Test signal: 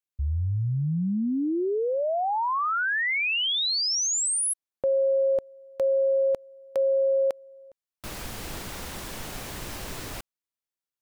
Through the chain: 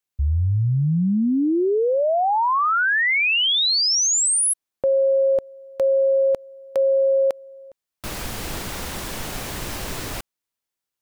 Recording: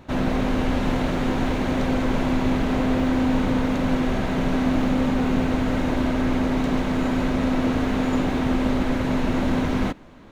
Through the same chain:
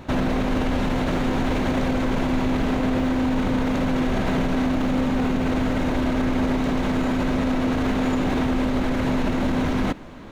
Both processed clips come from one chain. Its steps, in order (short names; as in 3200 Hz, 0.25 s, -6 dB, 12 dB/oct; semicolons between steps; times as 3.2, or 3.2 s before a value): limiter -21 dBFS; gain +6.5 dB